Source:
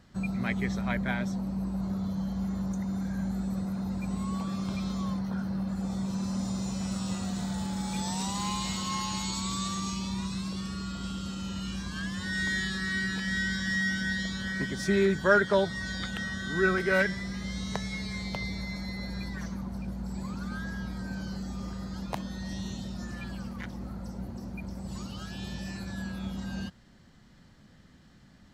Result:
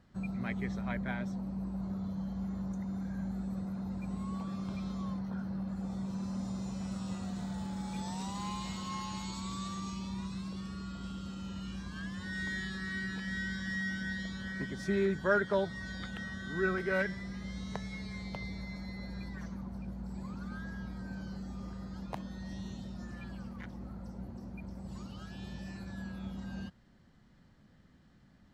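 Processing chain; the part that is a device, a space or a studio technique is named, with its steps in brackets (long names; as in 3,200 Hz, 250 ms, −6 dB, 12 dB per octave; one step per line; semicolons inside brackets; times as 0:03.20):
behind a face mask (high-shelf EQ 3,100 Hz −8 dB)
level −5.5 dB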